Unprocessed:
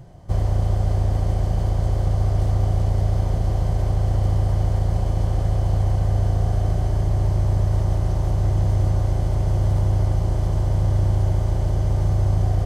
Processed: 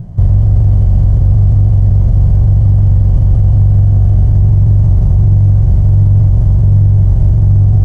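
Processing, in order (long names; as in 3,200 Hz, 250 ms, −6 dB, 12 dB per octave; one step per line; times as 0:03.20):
drawn EQ curve 190 Hz 0 dB, 320 Hz −12 dB, 3,700 Hz −20 dB
in parallel at −7.5 dB: soft clipping −18 dBFS, distortion −12 dB
on the sum: harmonic generator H 5 −40 dB, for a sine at −7.5 dBFS
phase-vocoder stretch with locked phases 0.62×
boost into a limiter +17.5 dB
level −1 dB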